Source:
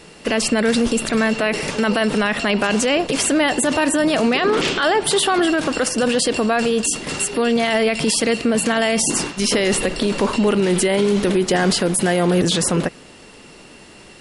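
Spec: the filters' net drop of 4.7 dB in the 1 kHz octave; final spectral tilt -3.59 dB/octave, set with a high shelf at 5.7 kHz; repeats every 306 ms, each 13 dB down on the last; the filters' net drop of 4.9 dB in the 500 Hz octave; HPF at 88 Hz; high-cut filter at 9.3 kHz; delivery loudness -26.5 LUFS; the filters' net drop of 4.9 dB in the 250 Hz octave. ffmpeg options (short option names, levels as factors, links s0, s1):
-af "highpass=88,lowpass=9300,equalizer=f=250:t=o:g=-5,equalizer=f=500:t=o:g=-3.5,equalizer=f=1000:t=o:g=-4.5,highshelf=f=5700:g=-7.5,aecho=1:1:306|612|918:0.224|0.0493|0.0108,volume=0.596"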